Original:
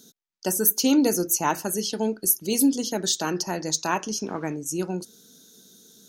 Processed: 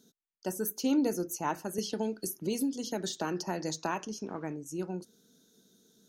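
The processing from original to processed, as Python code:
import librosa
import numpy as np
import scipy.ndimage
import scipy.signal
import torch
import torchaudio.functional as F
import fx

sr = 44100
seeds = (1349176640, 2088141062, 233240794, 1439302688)

y = fx.high_shelf(x, sr, hz=2900.0, db=-9.0)
y = fx.band_squash(y, sr, depth_pct=100, at=(1.78, 4.05))
y = y * 10.0 ** (-7.5 / 20.0)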